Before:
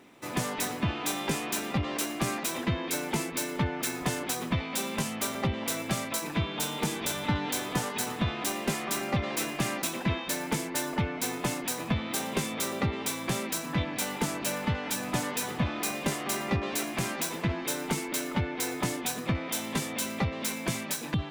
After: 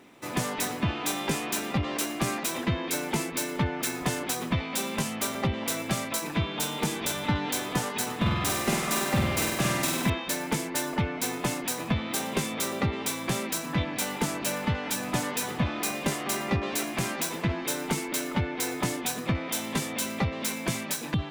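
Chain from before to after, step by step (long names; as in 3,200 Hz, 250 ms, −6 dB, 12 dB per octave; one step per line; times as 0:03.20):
0:08.16–0:10.10: flutter between parallel walls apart 8.4 metres, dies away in 1 s
level +1.5 dB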